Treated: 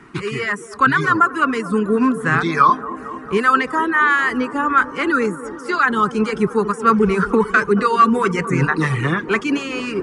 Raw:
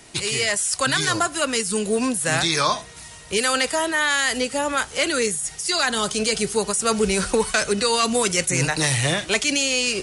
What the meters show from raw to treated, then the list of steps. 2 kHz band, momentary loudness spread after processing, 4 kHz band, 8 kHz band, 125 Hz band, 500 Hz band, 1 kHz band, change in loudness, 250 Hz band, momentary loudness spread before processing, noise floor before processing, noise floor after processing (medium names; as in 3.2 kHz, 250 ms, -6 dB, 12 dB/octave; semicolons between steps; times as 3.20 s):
+4.5 dB, 8 LU, -11.0 dB, -18.5 dB, +5.0 dB, +2.5 dB, +9.5 dB, +3.5 dB, +7.5 dB, 4 LU, -41 dBFS, -34 dBFS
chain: reverb removal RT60 0.84 s; FFT filter 100 Hz 0 dB, 170 Hz +10 dB, 410 Hz +7 dB, 620 Hz -9 dB, 1.2 kHz +14 dB, 3.9 kHz -13 dB, 10 kHz -19 dB; feedback echo behind a band-pass 225 ms, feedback 78%, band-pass 490 Hz, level -12 dB